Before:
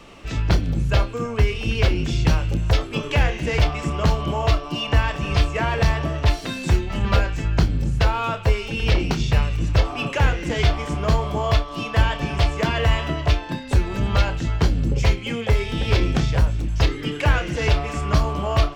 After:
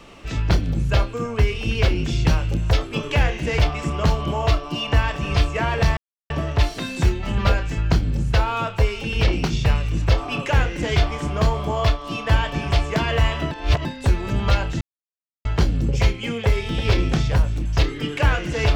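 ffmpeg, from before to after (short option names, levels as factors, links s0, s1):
-filter_complex "[0:a]asplit=5[s0][s1][s2][s3][s4];[s0]atrim=end=5.97,asetpts=PTS-STARTPTS,afade=t=out:st=5.966:d=0.004:c=hsin,apad=pad_dur=0.33[s5];[s1]atrim=start=5.97:end=13.182,asetpts=PTS-STARTPTS,afade=t=in:d=0.004:c=hsin[s6];[s2]atrim=start=13.178:end=13.522,asetpts=PTS-STARTPTS,areverse[s7];[s3]atrim=start=13.518:end=14.48,asetpts=PTS-STARTPTS,afade=t=out:st=0.958:d=0.004:c=hsin,apad=pad_dur=0.64[s8];[s4]atrim=start=14.48,asetpts=PTS-STARTPTS,afade=t=in:d=0.004:c=hsin[s9];[s5][s6]concat=n=2:v=0:a=1[s10];[s10][s7]acrossfade=d=0.004:c1=hsin:c2=hsin[s11];[s8][s9]concat=n=2:v=0:a=1[s12];[s11][s12]acrossfade=d=0.004:c1=hsin:c2=hsin"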